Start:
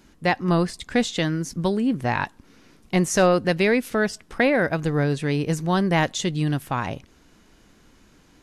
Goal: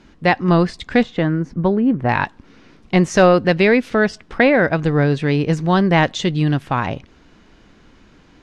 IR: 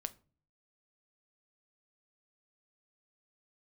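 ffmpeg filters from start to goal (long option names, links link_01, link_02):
-af "asetnsamples=nb_out_samples=441:pad=0,asendcmd='1.03 lowpass f 1600;2.09 lowpass f 4200',lowpass=4300,volume=6dB"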